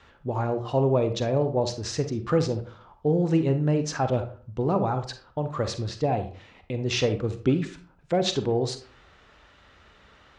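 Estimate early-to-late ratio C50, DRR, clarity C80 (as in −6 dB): 10.0 dB, 8.0 dB, 15.5 dB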